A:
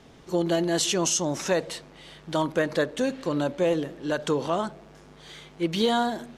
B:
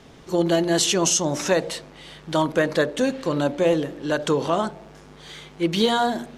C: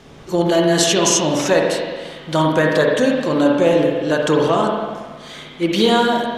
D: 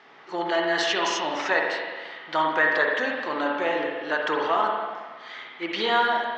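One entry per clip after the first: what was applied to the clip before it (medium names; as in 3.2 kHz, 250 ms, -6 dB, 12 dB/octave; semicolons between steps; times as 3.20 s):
de-hum 58.98 Hz, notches 15; trim +4.5 dB
reverberation RT60 1.5 s, pre-delay 45 ms, DRR 0 dB; trim +3.5 dB
cabinet simulation 490–4600 Hz, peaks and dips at 540 Hz -6 dB, 850 Hz +5 dB, 1.3 kHz +5 dB, 1.9 kHz +9 dB, 3.7 kHz -3 dB; trim -6 dB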